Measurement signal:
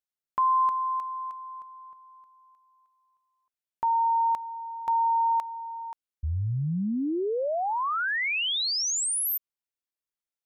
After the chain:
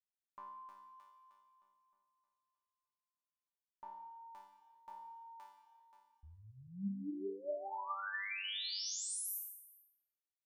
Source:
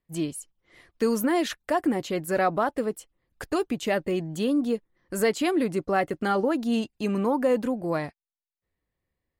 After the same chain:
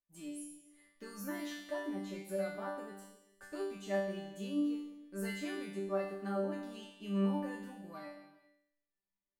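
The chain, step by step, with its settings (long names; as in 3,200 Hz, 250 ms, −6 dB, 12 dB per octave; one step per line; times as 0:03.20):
resonators tuned to a chord G3 fifth, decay 0.68 s
reverb whose tail is shaped and stops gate 460 ms falling, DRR 7.5 dB
level +3.5 dB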